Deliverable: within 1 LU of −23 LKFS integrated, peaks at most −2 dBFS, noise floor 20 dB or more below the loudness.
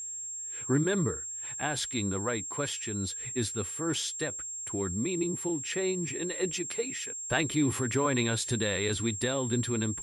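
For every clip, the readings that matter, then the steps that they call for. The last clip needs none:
interfering tone 7,500 Hz; level of the tone −36 dBFS; integrated loudness −30.5 LKFS; sample peak −14.0 dBFS; target loudness −23.0 LKFS
→ notch filter 7,500 Hz, Q 30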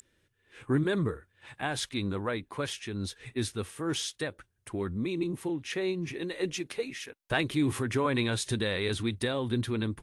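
interfering tone none found; integrated loudness −32.0 LKFS; sample peak −14.0 dBFS; target loudness −23.0 LKFS
→ level +9 dB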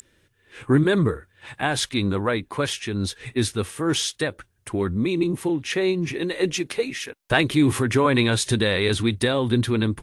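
integrated loudness −23.0 LKFS; sample peak −5.0 dBFS; background noise floor −64 dBFS

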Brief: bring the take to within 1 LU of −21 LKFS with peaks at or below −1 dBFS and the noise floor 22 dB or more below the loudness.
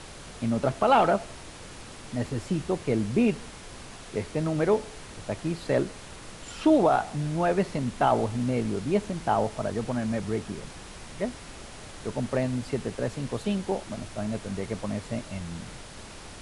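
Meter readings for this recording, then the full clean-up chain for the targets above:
background noise floor −44 dBFS; target noise floor −50 dBFS; integrated loudness −28.0 LKFS; sample peak −9.5 dBFS; target loudness −21.0 LKFS
→ noise reduction from a noise print 6 dB
level +7 dB

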